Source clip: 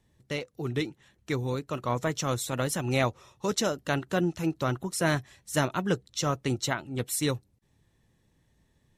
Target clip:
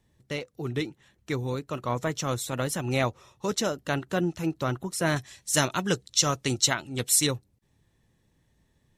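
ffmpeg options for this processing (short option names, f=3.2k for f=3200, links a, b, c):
-filter_complex "[0:a]asettb=1/sr,asplit=3[a][b][c];[a]atrim=end=5.164[d];[b]atrim=start=5.16:end=7.27,asetpts=PTS-STARTPTS,afade=t=in:d=0.004:c=qsin,afade=t=out:st=2.106:d=0.004:c=qsin,equalizer=f=6.5k:t=o:w=2.6:g=11[e];[c]atrim=start=7.266[f];[d][e]acrossfade=d=0.004:c1=hsin:c2=qsin[g];[g][f]acrossfade=d=0.004:c1=qsin:c2=hsin"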